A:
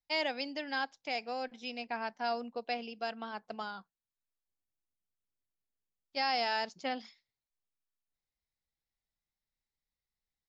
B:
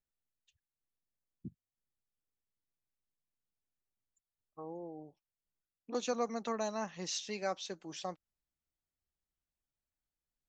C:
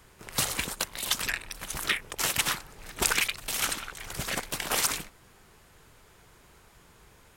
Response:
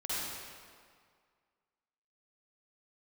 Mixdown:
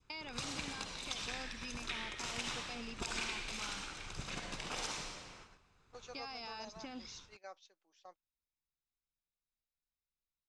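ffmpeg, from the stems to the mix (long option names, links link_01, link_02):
-filter_complex "[0:a]alimiter=level_in=8dB:limit=-24dB:level=0:latency=1,volume=-8dB,volume=2dB[link_01];[1:a]highpass=550,volume=-13dB[link_02];[2:a]volume=-7dB,asplit=2[link_03][link_04];[link_04]volume=-10dB[link_05];[link_01][link_03]amix=inputs=2:normalize=0,aecho=1:1:0.8:0.59,acompressor=threshold=-45dB:ratio=2.5,volume=0dB[link_06];[3:a]atrim=start_sample=2205[link_07];[link_05][link_07]afir=irnorm=-1:irlink=0[link_08];[link_02][link_06][link_08]amix=inputs=3:normalize=0,lowpass=frequency=6800:width=0.5412,lowpass=frequency=6800:width=1.3066,agate=range=-11dB:threshold=-55dB:ratio=16:detection=peak,adynamicequalizer=threshold=0.00158:dfrequency=1500:dqfactor=1.4:tfrequency=1500:tqfactor=1.4:attack=5:release=100:ratio=0.375:range=2:mode=cutabove:tftype=bell"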